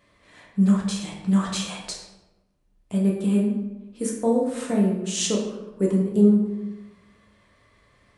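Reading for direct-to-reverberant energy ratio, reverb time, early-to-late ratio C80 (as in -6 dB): -3.0 dB, 1.0 s, 6.0 dB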